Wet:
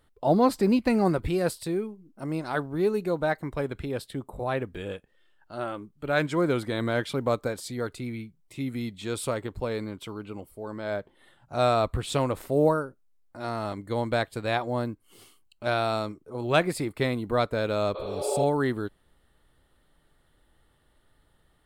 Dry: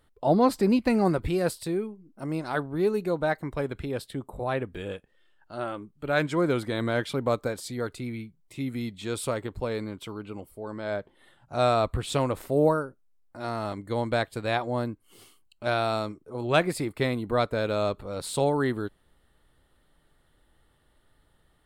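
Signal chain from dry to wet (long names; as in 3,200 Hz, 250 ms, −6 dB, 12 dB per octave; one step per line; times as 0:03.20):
floating-point word with a short mantissa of 6 bits
healed spectral selection 0:17.98–0:18.41, 310–4,500 Hz both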